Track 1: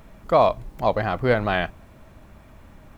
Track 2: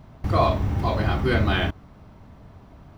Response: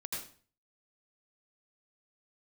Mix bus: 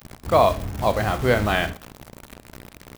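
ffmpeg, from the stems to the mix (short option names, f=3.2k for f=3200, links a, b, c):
-filter_complex "[0:a]highshelf=f=2.7k:g=6,aeval=exprs='val(0)+0.00794*(sin(2*PI*60*n/s)+sin(2*PI*2*60*n/s)/2+sin(2*PI*3*60*n/s)/3+sin(2*PI*4*60*n/s)/4+sin(2*PI*5*60*n/s)/5)':c=same,acrusher=bits=5:mix=0:aa=0.000001,volume=-1dB,asplit=2[a][b];[b]volume=-19dB[c];[1:a]volume=-1,adelay=22,volume=-7dB[d];[2:a]atrim=start_sample=2205[e];[c][e]afir=irnorm=-1:irlink=0[f];[a][d][f]amix=inputs=3:normalize=0"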